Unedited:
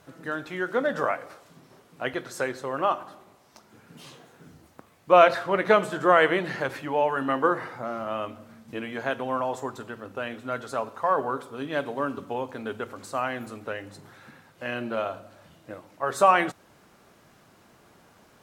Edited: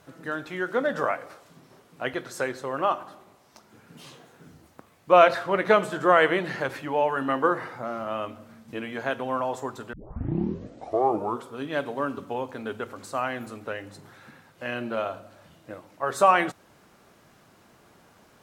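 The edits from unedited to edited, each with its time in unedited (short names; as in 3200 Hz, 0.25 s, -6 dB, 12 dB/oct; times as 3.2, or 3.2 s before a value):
9.93 tape start 1.57 s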